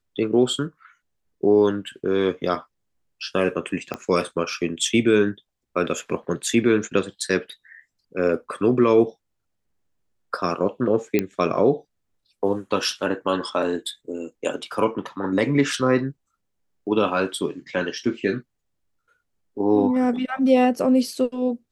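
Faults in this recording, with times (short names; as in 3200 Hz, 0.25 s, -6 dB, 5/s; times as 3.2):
3.94 pop -14 dBFS
11.19 pop -8 dBFS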